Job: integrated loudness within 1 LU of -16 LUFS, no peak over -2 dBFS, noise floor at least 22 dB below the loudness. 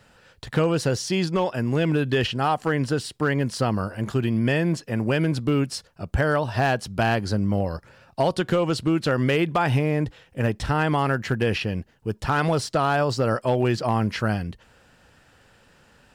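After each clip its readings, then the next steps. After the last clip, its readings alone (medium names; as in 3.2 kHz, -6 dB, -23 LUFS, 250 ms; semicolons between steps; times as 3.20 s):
clipped samples 0.4%; clipping level -13.5 dBFS; loudness -24.0 LUFS; peak level -13.5 dBFS; loudness target -16.0 LUFS
-> clip repair -13.5 dBFS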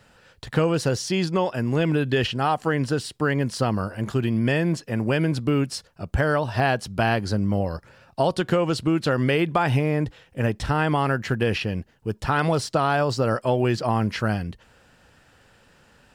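clipped samples 0.0%; loudness -24.0 LUFS; peak level -6.5 dBFS; loudness target -16.0 LUFS
-> trim +8 dB; peak limiter -2 dBFS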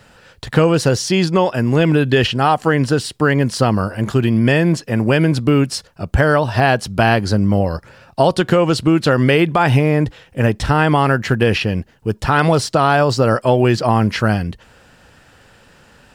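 loudness -16.0 LUFS; peak level -2.0 dBFS; noise floor -49 dBFS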